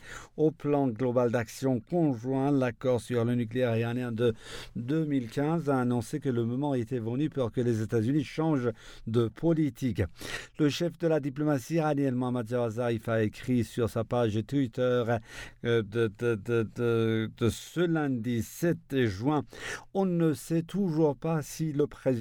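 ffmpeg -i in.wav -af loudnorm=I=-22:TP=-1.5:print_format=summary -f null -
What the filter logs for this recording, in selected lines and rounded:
Input Integrated:    -29.4 LUFS
Input True Peak:     -14.5 dBTP
Input LRA:             1.4 LU
Input Threshold:     -39.5 LUFS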